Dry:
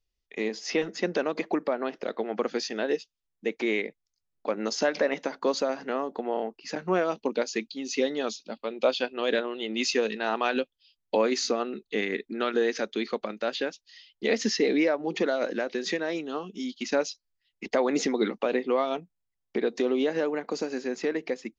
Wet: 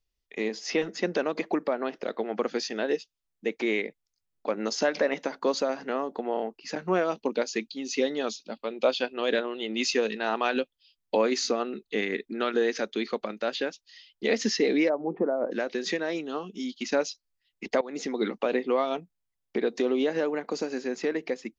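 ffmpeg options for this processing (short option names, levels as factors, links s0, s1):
-filter_complex "[0:a]asplit=3[s0][s1][s2];[s0]afade=t=out:st=14.88:d=0.02[s3];[s1]lowpass=f=1100:w=0.5412,lowpass=f=1100:w=1.3066,afade=t=in:st=14.88:d=0.02,afade=t=out:st=15.51:d=0.02[s4];[s2]afade=t=in:st=15.51:d=0.02[s5];[s3][s4][s5]amix=inputs=3:normalize=0,asplit=2[s6][s7];[s6]atrim=end=17.81,asetpts=PTS-STARTPTS,afade=t=out:st=17.806:d=0.004:c=hsin:silence=0.105925[s8];[s7]atrim=start=17.81,asetpts=PTS-STARTPTS,afade=t=in:d=0.54:silence=0.105925[s9];[s8][s9]concat=n=2:v=0:a=1"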